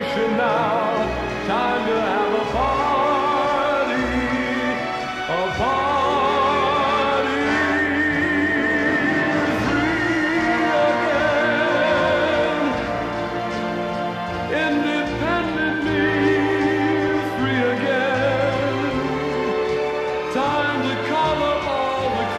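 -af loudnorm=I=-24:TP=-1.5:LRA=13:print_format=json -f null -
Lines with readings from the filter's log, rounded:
"input_i" : "-20.2",
"input_tp" : "-7.9",
"input_lra" : "2.6",
"input_thresh" : "-30.2",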